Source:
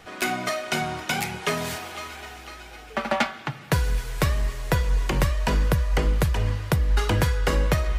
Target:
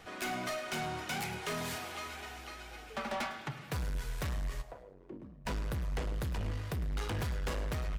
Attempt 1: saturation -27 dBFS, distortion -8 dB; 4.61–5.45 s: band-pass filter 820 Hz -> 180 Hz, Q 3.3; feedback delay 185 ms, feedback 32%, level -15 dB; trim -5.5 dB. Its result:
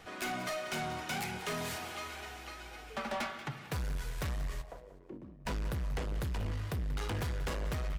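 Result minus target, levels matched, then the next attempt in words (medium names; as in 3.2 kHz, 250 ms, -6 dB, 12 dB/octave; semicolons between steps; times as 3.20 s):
echo 80 ms late
saturation -27 dBFS, distortion -8 dB; 4.61–5.45 s: band-pass filter 820 Hz -> 180 Hz, Q 3.3; feedback delay 105 ms, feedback 32%, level -15 dB; trim -5.5 dB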